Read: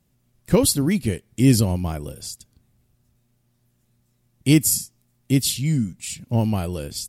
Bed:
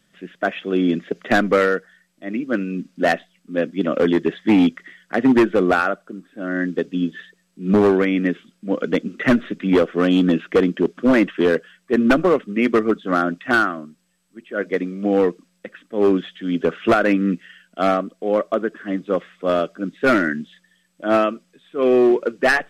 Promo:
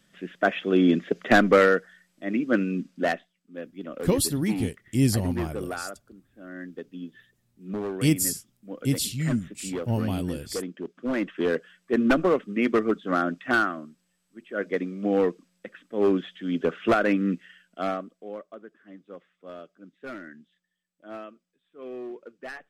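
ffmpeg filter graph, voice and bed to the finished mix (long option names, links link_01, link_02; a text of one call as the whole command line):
ffmpeg -i stem1.wav -i stem2.wav -filter_complex "[0:a]adelay=3550,volume=-6dB[link_01];[1:a]volume=10dB,afade=type=out:start_time=2.64:duration=0.7:silence=0.16788,afade=type=in:start_time=10.93:duration=0.82:silence=0.281838,afade=type=out:start_time=17.31:duration=1.14:silence=0.141254[link_02];[link_01][link_02]amix=inputs=2:normalize=0" out.wav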